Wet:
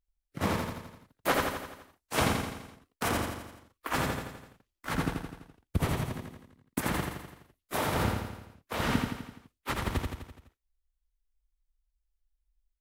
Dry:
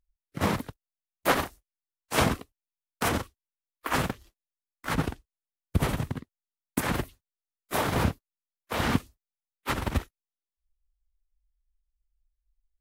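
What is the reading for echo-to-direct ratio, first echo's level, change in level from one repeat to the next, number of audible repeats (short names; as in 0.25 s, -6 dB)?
-2.5 dB, -4.0 dB, -5.0 dB, 6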